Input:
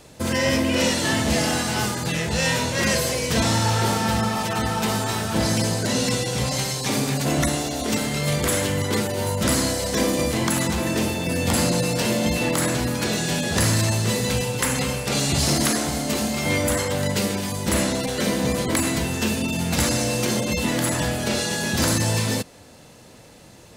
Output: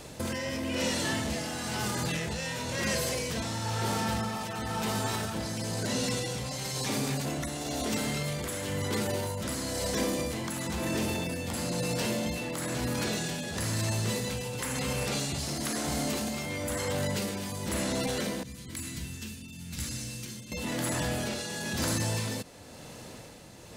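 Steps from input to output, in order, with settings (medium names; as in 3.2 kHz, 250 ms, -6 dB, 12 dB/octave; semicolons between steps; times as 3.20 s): 18.43–20.52 s: amplifier tone stack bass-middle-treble 6-0-2; peak limiter -24.5 dBFS, peak gain reduction 11 dB; tremolo 1 Hz, depth 47%; trim +2.5 dB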